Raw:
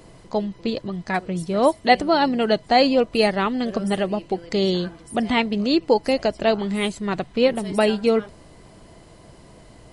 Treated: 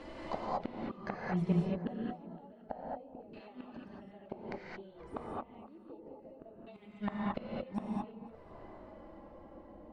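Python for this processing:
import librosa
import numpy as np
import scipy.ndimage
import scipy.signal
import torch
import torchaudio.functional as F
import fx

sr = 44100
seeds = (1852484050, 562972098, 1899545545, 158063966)

p1 = fx.low_shelf(x, sr, hz=190.0, db=-9.5)
p2 = fx.rider(p1, sr, range_db=5, speed_s=2.0)
p3 = fx.env_flanger(p2, sr, rest_ms=3.9, full_db=-18.0)
p4 = fx.gate_flip(p3, sr, shuts_db=-22.0, range_db=-35)
p5 = p4 + fx.echo_alternate(p4, sr, ms=256, hz=1100.0, feedback_pct=56, wet_db=-13.0, dry=0)
p6 = fx.rev_gated(p5, sr, seeds[0], gate_ms=250, shape='rising', drr_db=-5.0)
y = fx.filter_lfo_lowpass(p6, sr, shape='saw_down', hz=0.3, low_hz=700.0, high_hz=3100.0, q=0.71)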